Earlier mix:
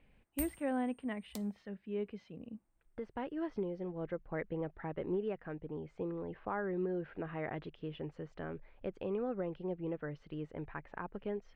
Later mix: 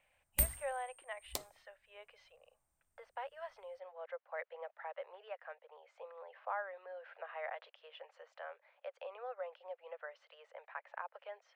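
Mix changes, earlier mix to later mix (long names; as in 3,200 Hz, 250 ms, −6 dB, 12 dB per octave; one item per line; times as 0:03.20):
speech: add Butterworth high-pass 530 Hz 72 dB per octave
background +9.5 dB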